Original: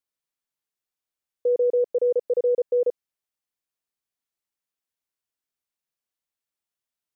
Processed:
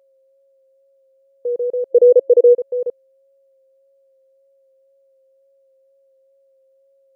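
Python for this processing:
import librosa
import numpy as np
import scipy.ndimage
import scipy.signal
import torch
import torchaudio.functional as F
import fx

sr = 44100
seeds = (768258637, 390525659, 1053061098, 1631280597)

y = x + 10.0 ** (-55.0 / 20.0) * np.sin(2.0 * np.pi * 540.0 * np.arange(len(x)) / sr)
y = fx.wow_flutter(y, sr, seeds[0], rate_hz=2.1, depth_cents=23.0)
y = fx.spec_box(y, sr, start_s=1.91, length_s=0.63, low_hz=330.0, high_hz=690.0, gain_db=12)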